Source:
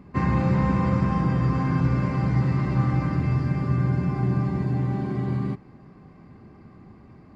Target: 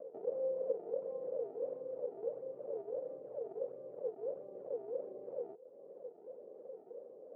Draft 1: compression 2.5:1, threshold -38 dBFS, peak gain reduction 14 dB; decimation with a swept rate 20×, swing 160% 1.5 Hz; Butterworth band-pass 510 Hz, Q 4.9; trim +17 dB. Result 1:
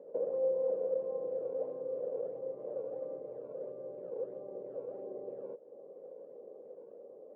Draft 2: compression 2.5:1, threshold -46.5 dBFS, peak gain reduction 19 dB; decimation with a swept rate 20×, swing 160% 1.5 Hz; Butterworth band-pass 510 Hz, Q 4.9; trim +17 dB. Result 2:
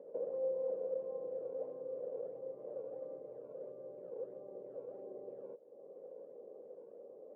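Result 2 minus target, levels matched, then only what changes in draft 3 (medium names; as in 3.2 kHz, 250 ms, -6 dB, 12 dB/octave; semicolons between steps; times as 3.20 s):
decimation with a swept rate: distortion -6 dB
change: decimation with a swept rate 47×, swing 160% 1.5 Hz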